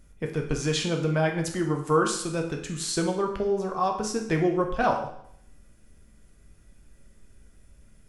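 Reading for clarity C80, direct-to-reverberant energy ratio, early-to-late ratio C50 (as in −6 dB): 10.0 dB, 2.0 dB, 7.0 dB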